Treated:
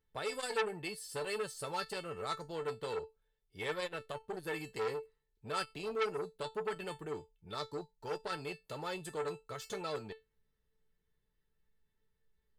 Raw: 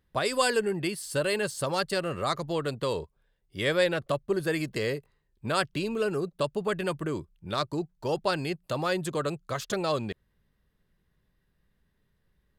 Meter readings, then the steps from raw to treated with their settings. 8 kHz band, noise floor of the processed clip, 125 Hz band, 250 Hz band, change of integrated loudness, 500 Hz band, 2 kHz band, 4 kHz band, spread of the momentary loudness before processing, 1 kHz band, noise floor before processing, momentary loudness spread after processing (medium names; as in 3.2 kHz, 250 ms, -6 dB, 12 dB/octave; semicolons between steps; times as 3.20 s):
-10.5 dB, -81 dBFS, -15.0 dB, -15.0 dB, -10.0 dB, -10.0 dB, -10.5 dB, -10.5 dB, 8 LU, -8.5 dB, -73 dBFS, 9 LU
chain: feedback comb 440 Hz, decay 0.19 s, harmonics all, mix 90%; transformer saturation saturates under 2.1 kHz; trim +4 dB